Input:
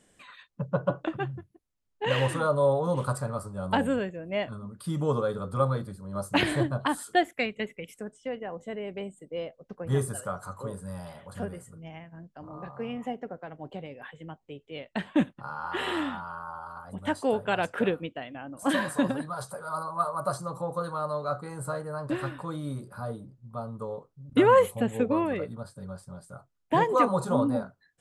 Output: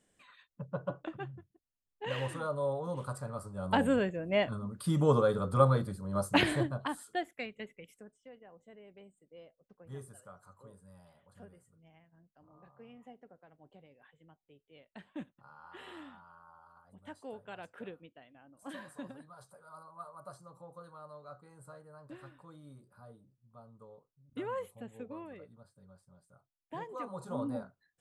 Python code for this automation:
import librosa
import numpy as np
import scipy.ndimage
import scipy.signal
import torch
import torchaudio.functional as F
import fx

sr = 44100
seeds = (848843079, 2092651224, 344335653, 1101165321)

y = fx.gain(x, sr, db=fx.line((3.11, -10.0), (4.1, 1.0), (6.17, 1.0), (7.09, -11.5), (7.88, -11.5), (8.29, -19.0), (27.01, -19.0), (27.49, -9.5)))